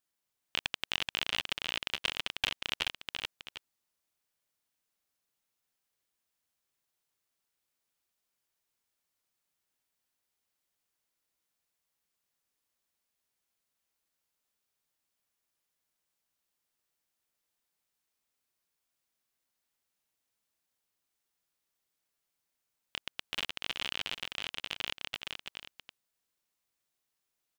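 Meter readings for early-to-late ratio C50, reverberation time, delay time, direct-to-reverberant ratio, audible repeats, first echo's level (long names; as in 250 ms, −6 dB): no reverb audible, no reverb audible, 429 ms, no reverb audible, 2, −4.0 dB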